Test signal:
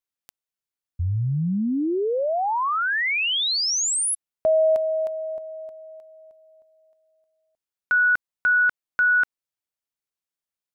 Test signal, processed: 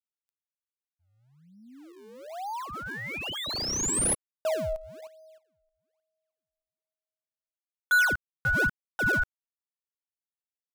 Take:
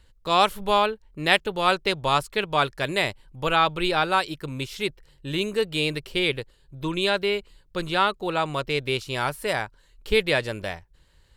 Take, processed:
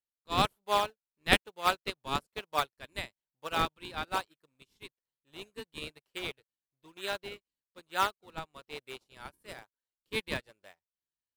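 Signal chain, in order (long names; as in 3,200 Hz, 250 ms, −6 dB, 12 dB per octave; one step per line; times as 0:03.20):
high-pass filter 580 Hz 6 dB per octave
high-shelf EQ 7,400 Hz +6.5 dB
in parallel at −5.5 dB: sample-and-hold swept by an LFO 38×, swing 160% 1.1 Hz
on the sum: expander for the loud parts 2.5 to 1, over −38 dBFS
level −4 dB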